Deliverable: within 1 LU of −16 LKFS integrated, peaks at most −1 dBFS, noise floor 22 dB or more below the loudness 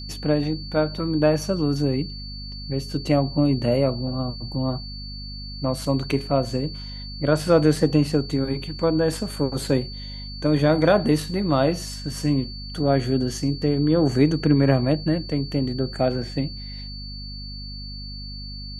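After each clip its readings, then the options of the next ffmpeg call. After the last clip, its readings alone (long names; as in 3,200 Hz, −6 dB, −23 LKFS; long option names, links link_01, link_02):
mains hum 50 Hz; hum harmonics up to 250 Hz; level of the hum −34 dBFS; interfering tone 4,500 Hz; level of the tone −37 dBFS; integrated loudness −23.0 LKFS; sample peak −4.0 dBFS; target loudness −16.0 LKFS
→ -af "bandreject=frequency=50:width_type=h:width=6,bandreject=frequency=100:width_type=h:width=6,bandreject=frequency=150:width_type=h:width=6,bandreject=frequency=200:width_type=h:width=6,bandreject=frequency=250:width_type=h:width=6"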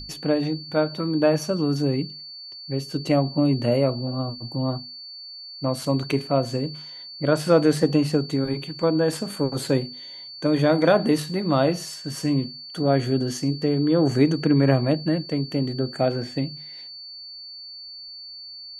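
mains hum none found; interfering tone 4,500 Hz; level of the tone −37 dBFS
→ -af "bandreject=frequency=4500:width=30"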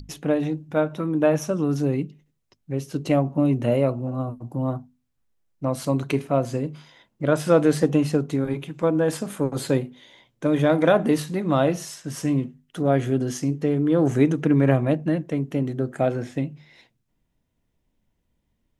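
interfering tone none found; integrated loudness −23.5 LKFS; sample peak −4.0 dBFS; target loudness −16.0 LKFS
→ -af "volume=7.5dB,alimiter=limit=-1dB:level=0:latency=1"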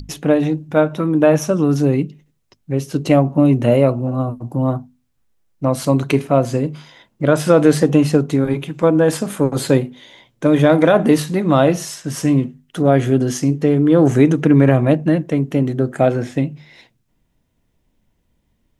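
integrated loudness −16.5 LKFS; sample peak −1.0 dBFS; background noise floor −66 dBFS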